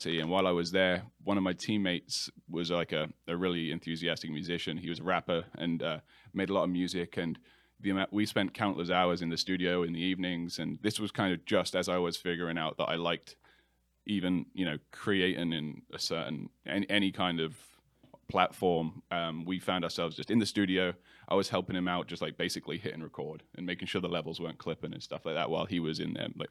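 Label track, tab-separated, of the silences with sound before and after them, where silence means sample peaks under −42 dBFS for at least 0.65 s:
13.310000	14.070000	silence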